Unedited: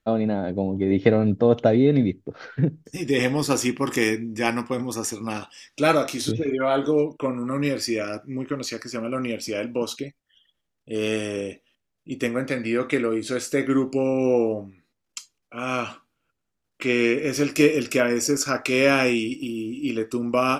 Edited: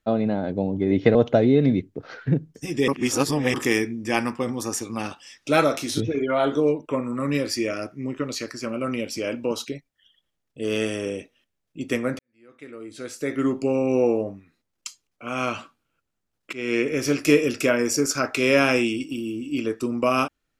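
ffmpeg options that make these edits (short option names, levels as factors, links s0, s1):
-filter_complex "[0:a]asplit=6[s0][s1][s2][s3][s4][s5];[s0]atrim=end=1.152[s6];[s1]atrim=start=1.458:end=3.192[s7];[s2]atrim=start=3.188:end=3.852,asetpts=PTS-STARTPTS,areverse[s8];[s3]atrim=start=3.848:end=12.5,asetpts=PTS-STARTPTS,afade=t=out:st=8.648:d=0.004:c=hsin[s9];[s4]atrim=start=12.5:end=16.84,asetpts=PTS-STARTPTS,afade=t=in:d=1.4:c=qua,afade=t=out:st=4.336:d=0.004:c=hsin:silence=0.11885[s10];[s5]atrim=start=16.84,asetpts=PTS-STARTPTS,afade=t=in:d=0.32:silence=0.11885[s11];[s6][s7]acrossfade=d=0.004:c1=hsin:c2=hsin[s12];[s12][s8]acrossfade=d=0.004:c1=hsin:c2=hsin[s13];[s9][s10][s11]concat=n=3:v=0:a=1[s14];[s13][s14]acrossfade=d=0.004:c1=hsin:c2=hsin"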